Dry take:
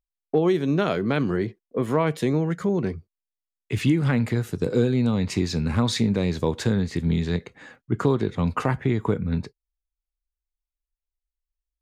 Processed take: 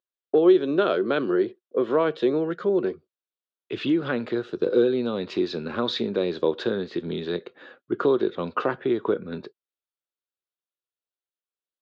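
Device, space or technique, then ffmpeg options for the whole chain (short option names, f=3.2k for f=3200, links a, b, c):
phone earpiece: -af "highpass=340,equalizer=f=360:t=q:w=4:g=8,equalizer=f=540:t=q:w=4:g=5,equalizer=f=860:t=q:w=4:g=-5,equalizer=f=1.4k:t=q:w=4:g=4,equalizer=f=2.1k:t=q:w=4:g=-10,equalizer=f=3.6k:t=q:w=4:g=4,lowpass=f=4k:w=0.5412,lowpass=f=4k:w=1.3066"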